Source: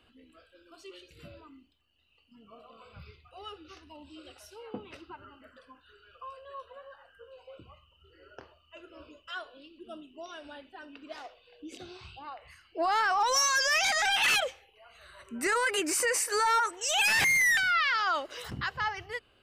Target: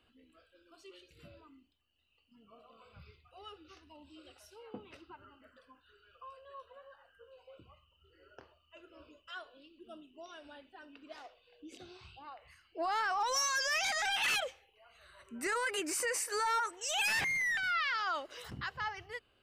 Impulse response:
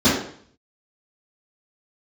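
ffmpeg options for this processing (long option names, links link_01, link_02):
-filter_complex "[0:a]asplit=3[link_01][link_02][link_03];[link_01]afade=type=out:start_time=17.19:duration=0.02[link_04];[link_02]lowpass=frequency=2500:poles=1,afade=type=in:start_time=17.19:duration=0.02,afade=type=out:start_time=17.62:duration=0.02[link_05];[link_03]afade=type=in:start_time=17.62:duration=0.02[link_06];[link_04][link_05][link_06]amix=inputs=3:normalize=0,volume=-6.5dB"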